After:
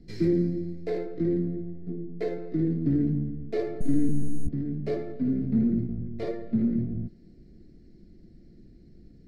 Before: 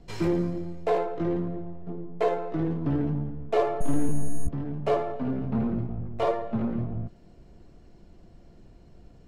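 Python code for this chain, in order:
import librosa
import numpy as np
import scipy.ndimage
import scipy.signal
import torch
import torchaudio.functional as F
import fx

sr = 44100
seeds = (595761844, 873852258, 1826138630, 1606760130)

y = fx.curve_eq(x, sr, hz=(110.0, 230.0, 340.0, 1000.0, 2000.0, 2900.0, 4500.0, 6900.0, 12000.0), db=(0, 6, 4, -23, -1, -13, 2, -9, -7))
y = y * librosa.db_to_amplitude(-1.5)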